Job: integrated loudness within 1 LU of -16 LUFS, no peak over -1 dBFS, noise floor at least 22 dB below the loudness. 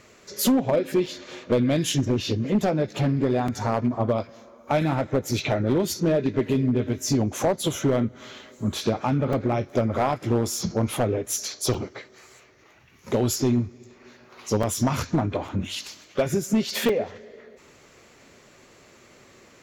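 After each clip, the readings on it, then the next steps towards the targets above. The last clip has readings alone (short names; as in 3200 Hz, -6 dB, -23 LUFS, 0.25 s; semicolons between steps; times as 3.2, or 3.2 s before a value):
clipped 1.4%; flat tops at -15.0 dBFS; dropouts 7; longest dropout 3.6 ms; loudness -25.0 LUFS; peak -15.0 dBFS; loudness target -16.0 LUFS
-> clip repair -15 dBFS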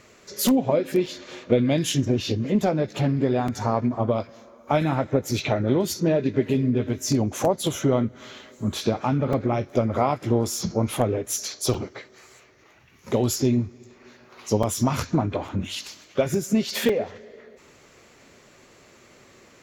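clipped 0.0%; dropouts 7; longest dropout 3.6 ms
-> interpolate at 1.06/3.48/9.33/11.74/14.63/15.48/16.89, 3.6 ms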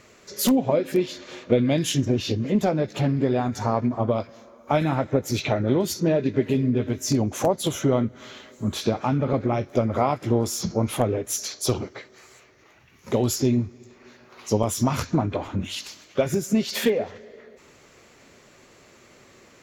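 dropouts 0; loudness -24.0 LUFS; peak -6.0 dBFS; loudness target -16.0 LUFS
-> gain +8 dB; limiter -1 dBFS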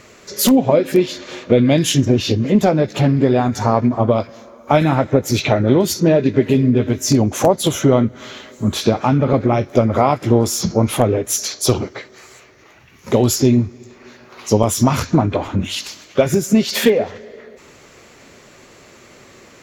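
loudness -16.5 LUFS; peak -1.0 dBFS; noise floor -46 dBFS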